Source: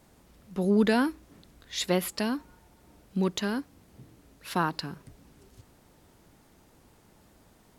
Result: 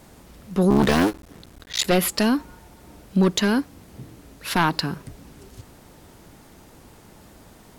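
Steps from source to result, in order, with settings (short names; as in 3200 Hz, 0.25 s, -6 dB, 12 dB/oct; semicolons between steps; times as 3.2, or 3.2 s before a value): 0.7–1.85 cycle switcher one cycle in 3, muted; sine folder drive 7 dB, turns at -11.5 dBFS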